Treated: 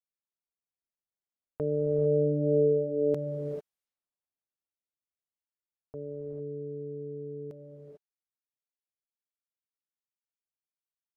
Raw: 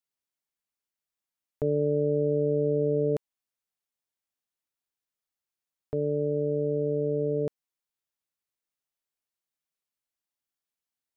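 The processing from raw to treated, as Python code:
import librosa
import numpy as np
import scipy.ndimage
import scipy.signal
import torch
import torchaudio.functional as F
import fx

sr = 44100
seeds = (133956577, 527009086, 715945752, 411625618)

y = fx.doppler_pass(x, sr, speed_mps=5, closest_m=5.7, pass_at_s=2.59)
y = fx.rev_gated(y, sr, seeds[0], gate_ms=470, shape='rising', drr_db=3.0)
y = fx.env_lowpass(y, sr, base_hz=780.0, full_db=-44.0)
y = y * 10.0 ** (-1.5 / 20.0)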